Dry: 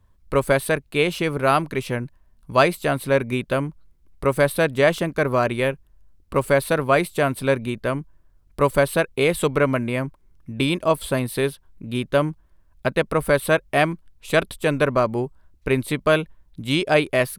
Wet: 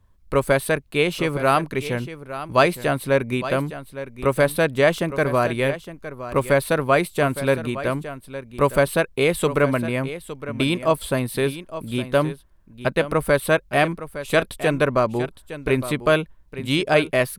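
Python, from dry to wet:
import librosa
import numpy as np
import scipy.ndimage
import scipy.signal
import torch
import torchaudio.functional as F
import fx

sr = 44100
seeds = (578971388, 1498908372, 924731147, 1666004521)

y = x + 10.0 ** (-13.0 / 20.0) * np.pad(x, (int(862 * sr / 1000.0), 0))[:len(x)]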